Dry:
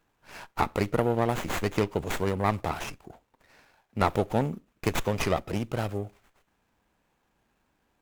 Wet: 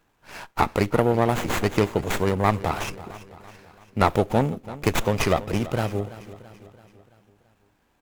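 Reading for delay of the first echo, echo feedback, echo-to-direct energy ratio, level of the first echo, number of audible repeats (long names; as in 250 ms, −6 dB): 334 ms, 53%, −15.0 dB, −16.5 dB, 4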